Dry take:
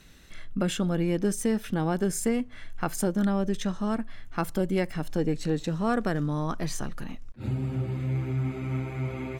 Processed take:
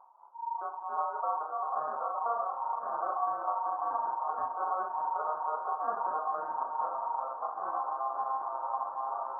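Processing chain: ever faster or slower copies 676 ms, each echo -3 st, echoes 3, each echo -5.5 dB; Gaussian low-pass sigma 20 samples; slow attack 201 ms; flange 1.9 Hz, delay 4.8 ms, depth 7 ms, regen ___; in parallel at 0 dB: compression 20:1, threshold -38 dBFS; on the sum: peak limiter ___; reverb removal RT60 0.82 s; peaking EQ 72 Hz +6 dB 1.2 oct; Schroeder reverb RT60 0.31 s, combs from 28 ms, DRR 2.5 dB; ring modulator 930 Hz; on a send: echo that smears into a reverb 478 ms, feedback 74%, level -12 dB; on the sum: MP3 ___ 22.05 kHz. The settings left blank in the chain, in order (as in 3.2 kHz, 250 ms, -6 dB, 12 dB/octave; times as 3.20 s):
-67%, -23.5 dBFS, 16 kbps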